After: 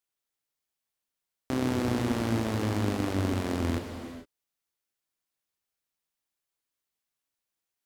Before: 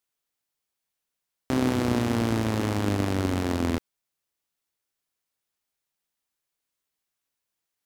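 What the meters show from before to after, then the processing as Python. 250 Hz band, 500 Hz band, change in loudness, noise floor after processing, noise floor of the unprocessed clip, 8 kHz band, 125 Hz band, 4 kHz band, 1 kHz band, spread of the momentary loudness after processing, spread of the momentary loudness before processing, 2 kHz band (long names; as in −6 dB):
−3.0 dB, −3.0 dB, −3.5 dB, below −85 dBFS, −84 dBFS, −3.5 dB, −2.5 dB, −3.0 dB, −3.5 dB, 12 LU, 4 LU, −3.0 dB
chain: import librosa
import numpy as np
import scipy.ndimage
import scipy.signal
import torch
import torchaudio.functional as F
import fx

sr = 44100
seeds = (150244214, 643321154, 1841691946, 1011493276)

y = fx.rev_gated(x, sr, seeds[0], gate_ms=480, shape='flat', drr_db=5.0)
y = F.gain(torch.from_numpy(y), -4.5).numpy()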